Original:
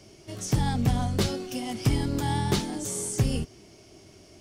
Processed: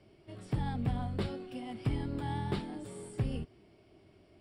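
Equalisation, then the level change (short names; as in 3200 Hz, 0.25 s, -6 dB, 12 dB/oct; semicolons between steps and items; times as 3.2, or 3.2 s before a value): running mean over 7 samples; -8.5 dB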